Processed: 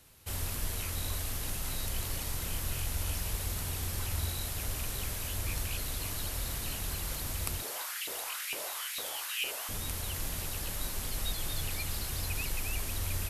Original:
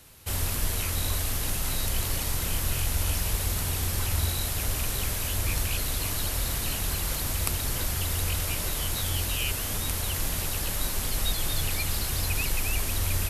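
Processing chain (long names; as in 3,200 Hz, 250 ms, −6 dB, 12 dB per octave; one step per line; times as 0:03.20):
0:07.62–0:09.69: auto-filter high-pass saw up 2.2 Hz 370–2,600 Hz
level −7 dB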